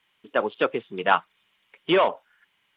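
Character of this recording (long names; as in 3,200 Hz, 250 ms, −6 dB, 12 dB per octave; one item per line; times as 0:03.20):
background noise floor −70 dBFS
spectral slope −2.0 dB per octave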